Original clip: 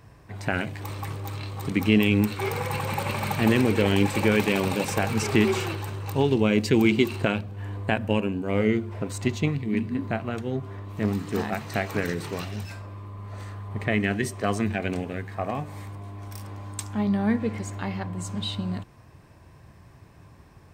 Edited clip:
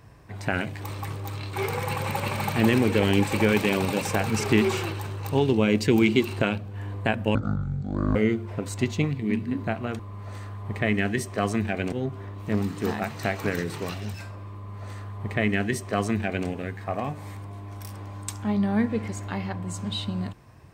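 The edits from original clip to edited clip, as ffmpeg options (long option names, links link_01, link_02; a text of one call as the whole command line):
ffmpeg -i in.wav -filter_complex "[0:a]asplit=6[link_01][link_02][link_03][link_04][link_05][link_06];[link_01]atrim=end=1.532[link_07];[link_02]atrim=start=2.358:end=8.184[link_08];[link_03]atrim=start=8.18:end=8.59,asetpts=PTS-STARTPTS,asetrate=22491,aresample=44100[link_09];[link_04]atrim=start=8.586:end=10.432[link_10];[link_05]atrim=start=13.048:end=14.982[link_11];[link_06]atrim=start=10.428[link_12];[link_07][link_08]acrossfade=duration=0.004:curve1=hsin:curve2=hsin[link_13];[link_13][link_09]acrossfade=duration=0.004:curve1=hsin:curve2=hsin[link_14];[link_14][link_10]acrossfade=duration=0.004:curve1=hsin:curve2=hsin[link_15];[link_15][link_11]acrossfade=duration=0.004:curve1=hsin:curve2=hsin[link_16];[link_16][link_12]acrossfade=duration=0.004:curve1=hsin:curve2=hsin" out.wav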